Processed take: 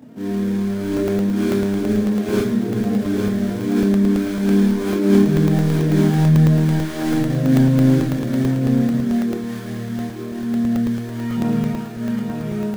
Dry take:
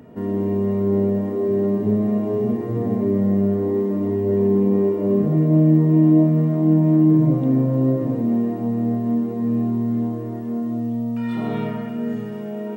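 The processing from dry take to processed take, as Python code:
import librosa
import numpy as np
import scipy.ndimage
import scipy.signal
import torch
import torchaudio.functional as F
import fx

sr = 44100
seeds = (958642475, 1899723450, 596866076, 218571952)

p1 = scipy.signal.sosfilt(scipy.signal.butter(4, 100.0, 'highpass', fs=sr, output='sos'), x)
p2 = fx.sample_hold(p1, sr, seeds[0], rate_hz=2000.0, jitter_pct=20)
p3 = p1 + (p2 * librosa.db_to_amplitude(-8.0))
p4 = 10.0 ** (-7.0 / 20.0) * np.tanh(p3 / 10.0 ** (-7.0 / 20.0))
p5 = fx.chorus_voices(p4, sr, voices=6, hz=0.16, base_ms=27, depth_ms=4.1, mix_pct=60)
p6 = fx.formant_shift(p5, sr, semitones=-2)
p7 = p6 + fx.echo_single(p6, sr, ms=856, db=-4.5, dry=0)
p8 = fx.buffer_crackle(p7, sr, first_s=0.97, period_s=0.11, block=64, kind='zero')
y = p8 * librosa.db_to_amplitude(2.0)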